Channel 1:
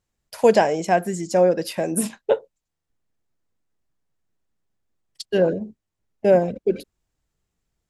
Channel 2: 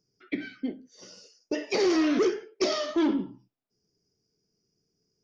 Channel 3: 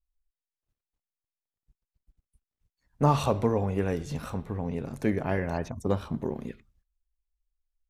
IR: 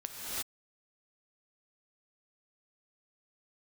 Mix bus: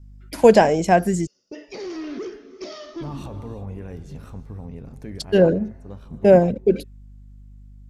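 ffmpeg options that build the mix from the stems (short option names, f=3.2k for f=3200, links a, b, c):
-filter_complex "[0:a]aeval=exprs='val(0)+0.00224*(sin(2*PI*50*n/s)+sin(2*PI*2*50*n/s)/2+sin(2*PI*3*50*n/s)/3+sin(2*PI*4*50*n/s)/4+sin(2*PI*5*50*n/s)/5)':c=same,volume=2dB,asplit=3[a][b][c];[a]atrim=end=1.27,asetpts=PTS-STARTPTS,afade=t=out:st=1.266:d=0.004:c=hsin[d];[b]atrim=start=1.27:end=3.02,asetpts=PTS-STARTPTS,volume=0[e];[c]atrim=start=3.02,asetpts=PTS-STARTPTS,afade=t=in:d=0.004:c=hsin[f];[d][e][f]concat=n=3:v=0:a=1,asplit=2[g][h];[1:a]volume=-8.5dB,asplit=2[i][j];[j]volume=-17.5dB[k];[2:a]volume=-10dB,asplit=2[l][m];[m]volume=-16.5dB[n];[h]apad=whole_len=348191[o];[l][o]sidechaincompress=threshold=-31dB:ratio=8:attack=8.2:release=518[p];[i][p]amix=inputs=2:normalize=0,alimiter=level_in=5.5dB:limit=-24dB:level=0:latency=1:release=57,volume=-5.5dB,volume=0dB[q];[3:a]atrim=start_sample=2205[r];[k][n]amix=inputs=2:normalize=0[s];[s][r]afir=irnorm=-1:irlink=0[t];[g][q][t]amix=inputs=3:normalize=0,lowshelf=f=160:g=10.5"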